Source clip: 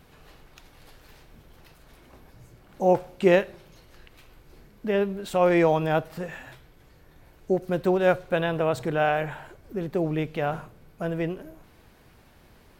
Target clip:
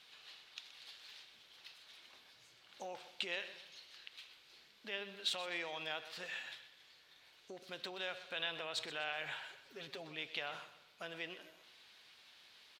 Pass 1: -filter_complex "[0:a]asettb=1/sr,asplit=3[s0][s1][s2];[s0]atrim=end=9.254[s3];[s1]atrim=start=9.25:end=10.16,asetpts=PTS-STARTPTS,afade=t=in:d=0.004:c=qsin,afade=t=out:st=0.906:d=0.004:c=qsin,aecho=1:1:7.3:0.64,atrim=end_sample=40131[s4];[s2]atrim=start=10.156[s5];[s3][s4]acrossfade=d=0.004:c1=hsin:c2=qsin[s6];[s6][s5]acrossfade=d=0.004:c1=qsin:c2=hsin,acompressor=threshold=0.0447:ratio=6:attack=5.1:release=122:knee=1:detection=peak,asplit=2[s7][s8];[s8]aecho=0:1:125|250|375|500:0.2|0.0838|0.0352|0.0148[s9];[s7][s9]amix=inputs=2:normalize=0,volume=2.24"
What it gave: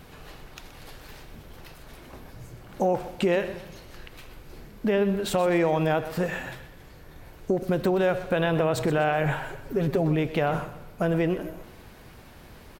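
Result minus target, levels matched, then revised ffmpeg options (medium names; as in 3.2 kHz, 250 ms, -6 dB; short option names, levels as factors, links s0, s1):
4 kHz band -16.5 dB
-filter_complex "[0:a]asettb=1/sr,asplit=3[s0][s1][s2];[s0]atrim=end=9.254[s3];[s1]atrim=start=9.25:end=10.16,asetpts=PTS-STARTPTS,afade=t=in:d=0.004:c=qsin,afade=t=out:st=0.906:d=0.004:c=qsin,aecho=1:1:7.3:0.64,atrim=end_sample=40131[s4];[s2]atrim=start=10.156[s5];[s3][s4]acrossfade=d=0.004:c1=hsin:c2=qsin[s6];[s6][s5]acrossfade=d=0.004:c1=qsin:c2=hsin,acompressor=threshold=0.0447:ratio=6:attack=5.1:release=122:knee=1:detection=peak,bandpass=f=3700:t=q:w=2.2:csg=0,asplit=2[s7][s8];[s8]aecho=0:1:125|250|375|500:0.2|0.0838|0.0352|0.0148[s9];[s7][s9]amix=inputs=2:normalize=0,volume=2.24"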